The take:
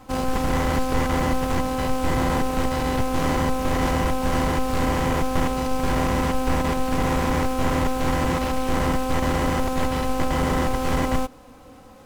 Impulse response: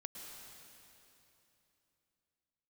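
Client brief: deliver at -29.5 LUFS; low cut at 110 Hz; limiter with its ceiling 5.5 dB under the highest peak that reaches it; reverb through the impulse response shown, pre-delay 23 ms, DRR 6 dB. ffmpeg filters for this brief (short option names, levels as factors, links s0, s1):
-filter_complex "[0:a]highpass=110,alimiter=limit=0.168:level=0:latency=1,asplit=2[s0][s1];[1:a]atrim=start_sample=2205,adelay=23[s2];[s1][s2]afir=irnorm=-1:irlink=0,volume=0.708[s3];[s0][s3]amix=inputs=2:normalize=0,volume=0.501"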